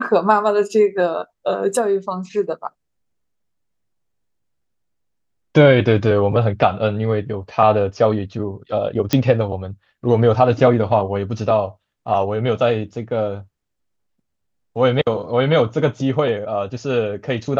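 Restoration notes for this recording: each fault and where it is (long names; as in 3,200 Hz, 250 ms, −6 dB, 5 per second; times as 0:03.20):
0:09.13: click −3 dBFS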